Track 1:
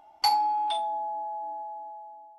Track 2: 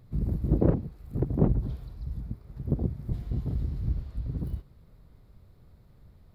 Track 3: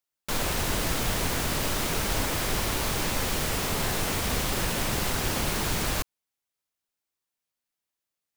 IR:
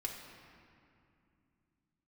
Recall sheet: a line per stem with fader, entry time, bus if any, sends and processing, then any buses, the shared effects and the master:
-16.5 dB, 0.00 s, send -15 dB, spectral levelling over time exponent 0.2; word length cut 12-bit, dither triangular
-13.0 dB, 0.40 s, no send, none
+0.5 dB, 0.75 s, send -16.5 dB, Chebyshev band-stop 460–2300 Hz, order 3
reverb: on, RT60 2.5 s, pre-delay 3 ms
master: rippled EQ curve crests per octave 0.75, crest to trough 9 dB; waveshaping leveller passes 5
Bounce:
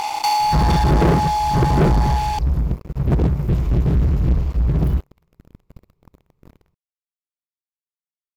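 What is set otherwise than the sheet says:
stem 2 -13.0 dB -> -2.0 dB; stem 3: muted

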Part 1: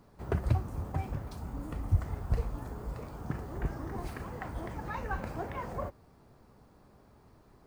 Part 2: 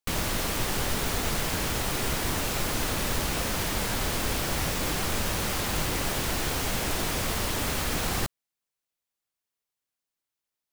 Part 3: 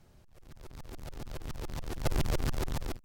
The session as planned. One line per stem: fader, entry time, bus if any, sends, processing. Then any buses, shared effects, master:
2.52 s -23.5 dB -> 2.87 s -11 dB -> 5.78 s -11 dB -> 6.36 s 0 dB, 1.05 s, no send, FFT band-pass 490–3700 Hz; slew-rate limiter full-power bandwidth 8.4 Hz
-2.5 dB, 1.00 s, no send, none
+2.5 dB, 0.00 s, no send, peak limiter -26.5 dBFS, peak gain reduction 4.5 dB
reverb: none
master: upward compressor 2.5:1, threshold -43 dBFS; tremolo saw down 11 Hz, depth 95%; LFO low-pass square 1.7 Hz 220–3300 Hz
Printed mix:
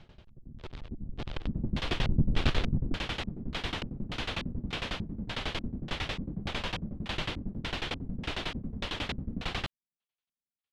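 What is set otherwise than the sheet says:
stem 2: entry 1.00 s -> 1.40 s; stem 3 +2.5 dB -> +8.5 dB; master: missing upward compressor 2.5:1, threshold -43 dBFS

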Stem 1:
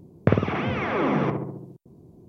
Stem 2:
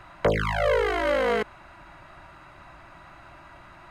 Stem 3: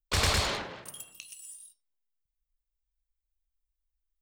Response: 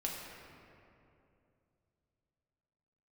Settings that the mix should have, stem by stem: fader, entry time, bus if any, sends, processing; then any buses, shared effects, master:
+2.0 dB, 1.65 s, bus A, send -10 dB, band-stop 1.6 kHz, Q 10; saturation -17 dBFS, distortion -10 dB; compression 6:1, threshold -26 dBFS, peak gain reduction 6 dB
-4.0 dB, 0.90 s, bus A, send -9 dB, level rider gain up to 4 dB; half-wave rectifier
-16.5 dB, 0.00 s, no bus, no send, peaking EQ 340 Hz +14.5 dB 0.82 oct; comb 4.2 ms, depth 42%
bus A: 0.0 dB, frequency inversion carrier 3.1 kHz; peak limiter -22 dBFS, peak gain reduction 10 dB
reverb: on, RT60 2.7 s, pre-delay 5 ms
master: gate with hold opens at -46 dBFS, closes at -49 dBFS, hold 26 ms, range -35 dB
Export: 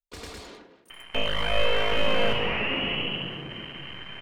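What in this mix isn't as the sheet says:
stem 2 -4.0 dB -> +3.5 dB; master: missing gate with hold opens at -46 dBFS, closes at -49 dBFS, hold 26 ms, range -35 dB

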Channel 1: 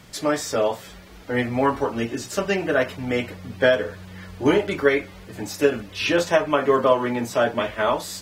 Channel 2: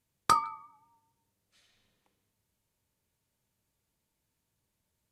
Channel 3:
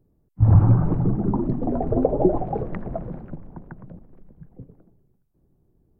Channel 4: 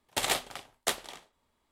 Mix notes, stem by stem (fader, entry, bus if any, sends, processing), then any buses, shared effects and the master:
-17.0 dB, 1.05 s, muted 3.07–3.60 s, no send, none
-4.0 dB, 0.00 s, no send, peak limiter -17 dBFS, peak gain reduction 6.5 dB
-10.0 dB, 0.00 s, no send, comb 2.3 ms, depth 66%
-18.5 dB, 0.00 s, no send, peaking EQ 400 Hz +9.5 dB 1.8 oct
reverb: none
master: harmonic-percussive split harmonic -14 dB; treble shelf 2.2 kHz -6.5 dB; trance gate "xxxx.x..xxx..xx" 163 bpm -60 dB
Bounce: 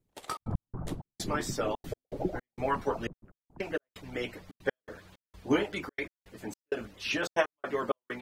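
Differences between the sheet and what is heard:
stem 1 -17.0 dB -> -5.0 dB; stem 3: missing comb 2.3 ms, depth 66%; master: missing treble shelf 2.2 kHz -6.5 dB

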